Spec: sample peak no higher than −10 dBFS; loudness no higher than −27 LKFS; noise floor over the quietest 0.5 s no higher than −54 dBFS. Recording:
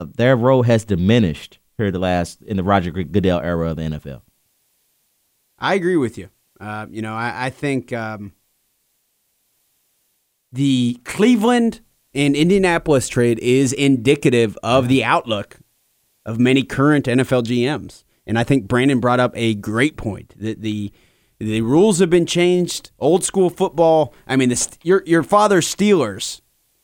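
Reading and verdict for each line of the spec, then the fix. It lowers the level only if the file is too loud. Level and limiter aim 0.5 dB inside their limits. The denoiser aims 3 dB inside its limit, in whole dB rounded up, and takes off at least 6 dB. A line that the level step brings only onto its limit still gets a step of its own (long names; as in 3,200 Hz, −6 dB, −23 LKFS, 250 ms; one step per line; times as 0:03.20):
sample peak −2.5 dBFS: out of spec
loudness −17.5 LKFS: out of spec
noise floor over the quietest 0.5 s −67 dBFS: in spec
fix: level −10 dB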